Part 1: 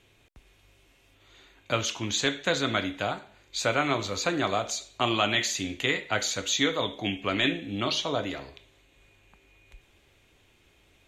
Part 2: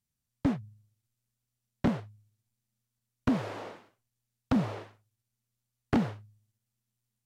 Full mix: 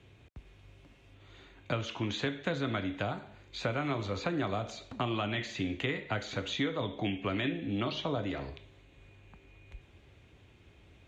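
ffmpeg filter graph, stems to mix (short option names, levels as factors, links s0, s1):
-filter_complex "[0:a]highpass=83,aemphasis=mode=reproduction:type=bsi,volume=1.06,asplit=2[s0][s1];[1:a]acompressor=threshold=0.00562:ratio=2,adelay=400,volume=0.376[s2];[s1]apad=whole_len=337416[s3];[s2][s3]sidechaingate=range=0.0224:threshold=0.002:ratio=16:detection=peak[s4];[s0][s4]amix=inputs=2:normalize=0,acrossover=split=280|3900[s5][s6][s7];[s5]acompressor=threshold=0.0141:ratio=4[s8];[s6]acompressor=threshold=0.0224:ratio=4[s9];[s7]acompressor=threshold=0.00158:ratio=4[s10];[s8][s9][s10]amix=inputs=3:normalize=0"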